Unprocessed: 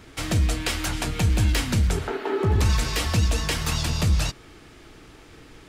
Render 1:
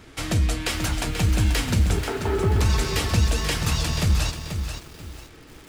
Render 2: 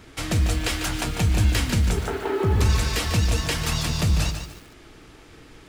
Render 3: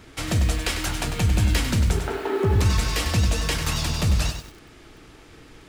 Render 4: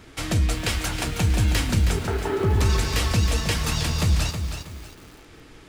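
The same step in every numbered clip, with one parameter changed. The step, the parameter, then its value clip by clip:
feedback echo at a low word length, delay time: 485, 147, 98, 319 milliseconds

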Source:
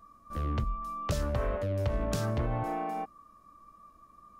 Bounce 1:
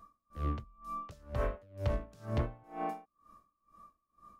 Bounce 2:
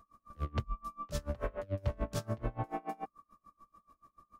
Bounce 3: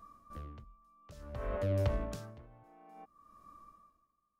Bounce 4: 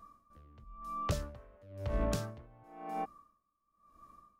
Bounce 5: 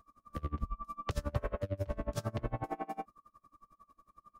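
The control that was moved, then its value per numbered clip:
tremolo with a sine in dB, speed: 2.1, 6.9, 0.57, 0.98, 11 Hertz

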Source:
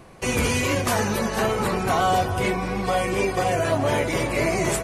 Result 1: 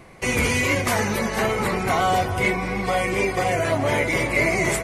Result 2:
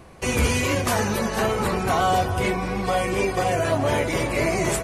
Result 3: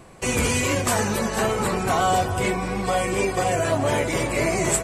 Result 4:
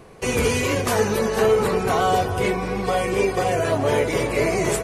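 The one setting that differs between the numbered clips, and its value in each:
parametric band, centre frequency: 2,100, 70, 7,800, 440 Hertz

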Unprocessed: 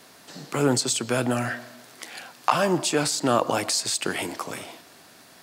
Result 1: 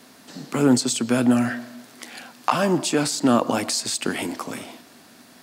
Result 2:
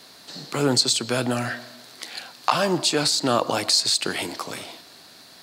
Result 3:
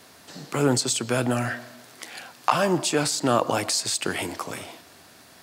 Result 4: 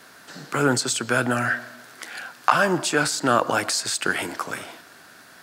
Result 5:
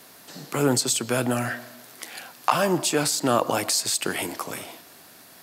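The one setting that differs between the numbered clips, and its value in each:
parametric band, centre frequency: 240, 4,200, 82, 1,500, 13,000 Hertz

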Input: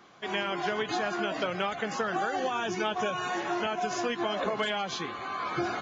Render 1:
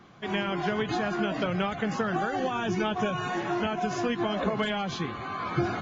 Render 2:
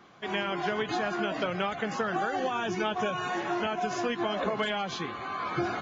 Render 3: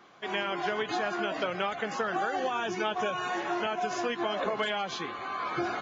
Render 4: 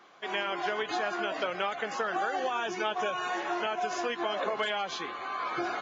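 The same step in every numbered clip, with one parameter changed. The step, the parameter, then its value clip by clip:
bass and treble, bass: +13, +4, −4, −14 decibels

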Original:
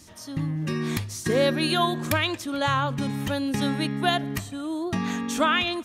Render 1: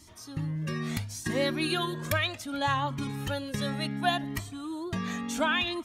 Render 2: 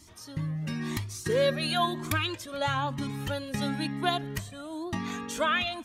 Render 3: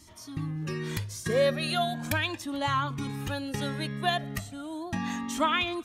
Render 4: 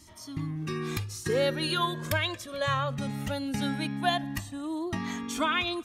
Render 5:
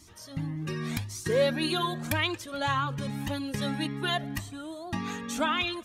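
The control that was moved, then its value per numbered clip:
flanger whose copies keep moving one way, speed: 0.69, 1, 0.37, 0.2, 1.8 Hertz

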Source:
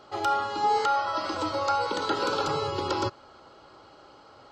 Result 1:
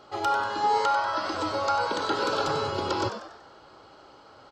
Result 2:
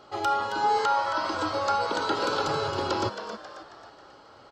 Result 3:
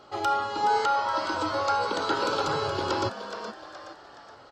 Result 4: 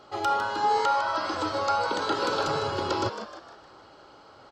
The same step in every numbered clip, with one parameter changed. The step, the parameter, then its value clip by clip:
echo with shifted repeats, delay time: 95, 270, 421, 154 milliseconds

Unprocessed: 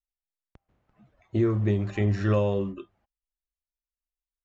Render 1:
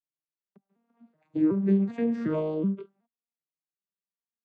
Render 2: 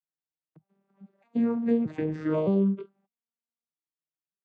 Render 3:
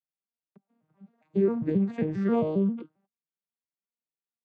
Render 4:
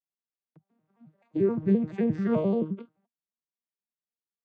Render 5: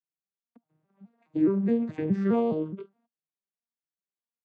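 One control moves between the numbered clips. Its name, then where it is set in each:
vocoder with an arpeggio as carrier, a note every: 375, 615, 134, 87, 209 milliseconds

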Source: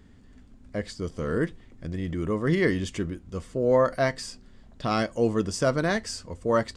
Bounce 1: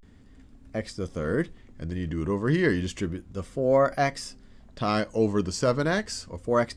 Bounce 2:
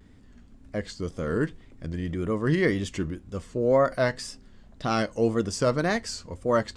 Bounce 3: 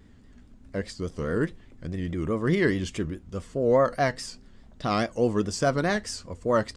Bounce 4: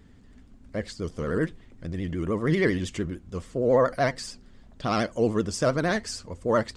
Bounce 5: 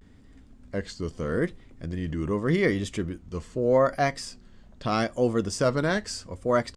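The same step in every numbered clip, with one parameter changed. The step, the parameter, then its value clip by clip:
pitch vibrato, speed: 0.32, 1.9, 4.8, 13, 0.81 Hertz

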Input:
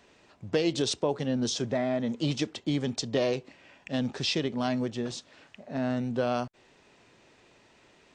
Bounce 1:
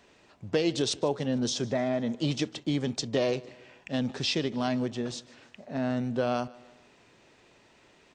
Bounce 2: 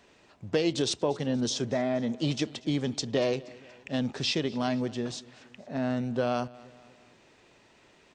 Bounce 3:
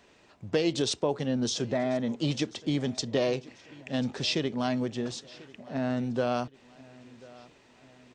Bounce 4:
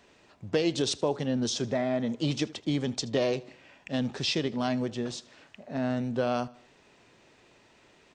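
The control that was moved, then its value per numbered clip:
repeating echo, delay time: 151, 237, 1,040, 78 milliseconds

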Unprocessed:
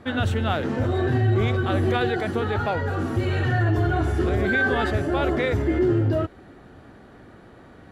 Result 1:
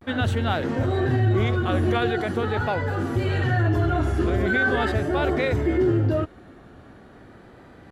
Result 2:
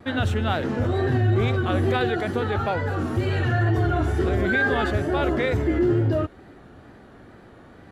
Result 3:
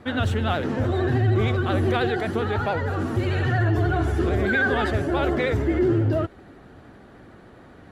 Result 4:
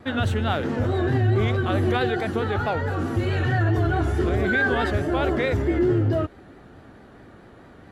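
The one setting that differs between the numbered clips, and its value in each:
pitch vibrato, speed: 0.42, 2.2, 13, 4.6 Hertz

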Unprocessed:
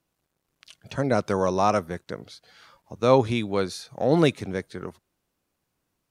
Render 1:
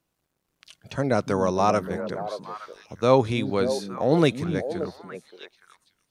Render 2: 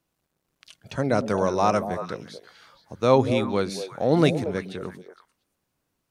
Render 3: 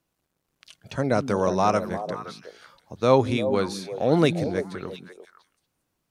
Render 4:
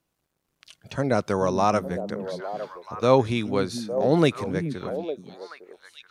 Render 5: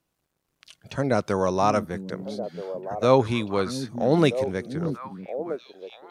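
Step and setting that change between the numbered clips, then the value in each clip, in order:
echo through a band-pass that steps, delay time: 289, 116, 173, 429, 639 milliseconds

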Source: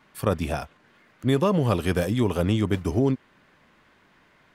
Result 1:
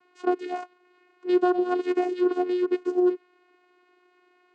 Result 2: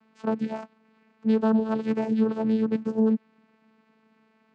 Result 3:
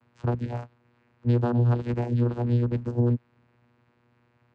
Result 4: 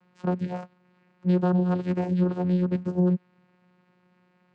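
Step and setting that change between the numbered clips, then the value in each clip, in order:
channel vocoder, frequency: 360, 220, 120, 180 Hertz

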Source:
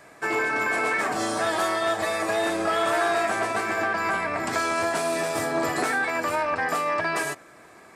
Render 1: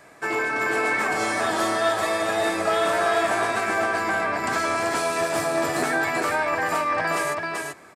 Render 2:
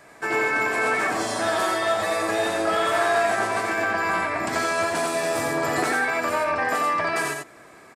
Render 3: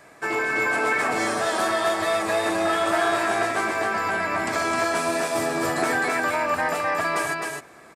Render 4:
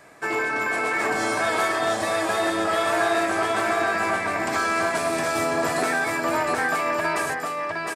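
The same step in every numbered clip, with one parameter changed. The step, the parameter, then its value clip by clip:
single-tap delay, delay time: 386, 89, 260, 711 milliseconds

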